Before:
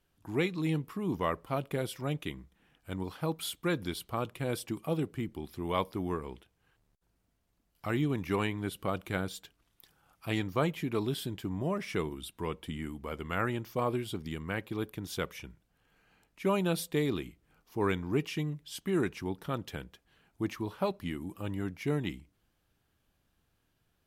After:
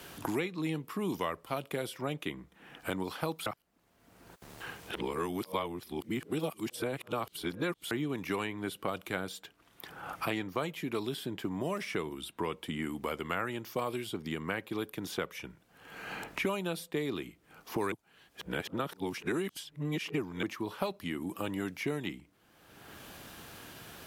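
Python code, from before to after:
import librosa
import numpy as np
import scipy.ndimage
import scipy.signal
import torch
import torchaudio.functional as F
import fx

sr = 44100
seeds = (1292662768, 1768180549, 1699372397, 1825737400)

y = fx.edit(x, sr, fx.reverse_span(start_s=3.46, length_s=4.45),
    fx.reverse_span(start_s=17.92, length_s=2.51), tone=tone)
y = fx.highpass(y, sr, hz=280.0, slope=6)
y = fx.band_squash(y, sr, depth_pct=100)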